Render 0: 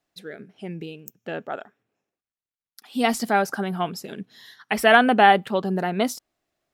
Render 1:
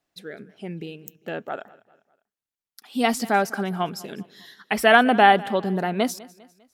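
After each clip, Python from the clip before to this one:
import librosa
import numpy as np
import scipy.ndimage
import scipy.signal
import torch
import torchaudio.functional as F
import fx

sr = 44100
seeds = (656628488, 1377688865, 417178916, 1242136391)

y = fx.echo_feedback(x, sr, ms=200, feedback_pct=43, wet_db=-21)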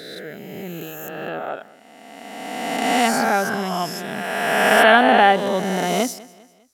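y = fx.spec_swells(x, sr, rise_s=2.17)
y = y * 10.0 ** (-1.0 / 20.0)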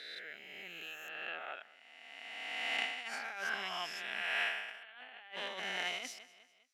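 y = fx.over_compress(x, sr, threshold_db=-22.0, ratio=-0.5)
y = fx.bandpass_q(y, sr, hz=2500.0, q=2.3)
y = y * 10.0 ** (-5.5 / 20.0)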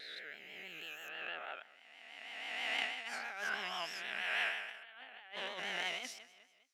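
y = fx.vibrato(x, sr, rate_hz=6.2, depth_cents=77.0)
y = y * 10.0 ** (-1.0 / 20.0)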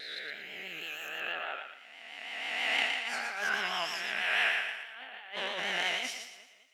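y = fx.echo_thinned(x, sr, ms=116, feedback_pct=35, hz=840.0, wet_db=-5.5)
y = y * 10.0 ** (6.5 / 20.0)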